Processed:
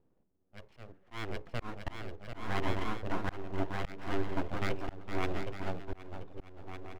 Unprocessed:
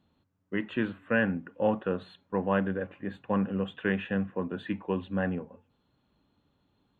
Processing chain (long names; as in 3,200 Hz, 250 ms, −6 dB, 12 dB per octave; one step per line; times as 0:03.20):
adaptive Wiener filter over 41 samples
dynamic equaliser 250 Hz, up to −5 dB, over −43 dBFS, Q 1.7
full-wave rectification
bouncing-ball delay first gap 770 ms, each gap 0.6×, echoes 5
volume swells 372 ms
level +1 dB